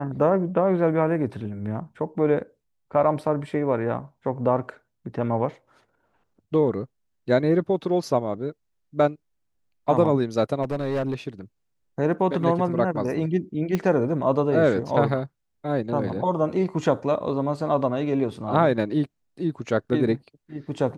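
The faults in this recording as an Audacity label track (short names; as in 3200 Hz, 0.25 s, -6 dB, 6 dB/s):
10.620000	11.140000	clipped -21.5 dBFS
13.750000	13.750000	pop -12 dBFS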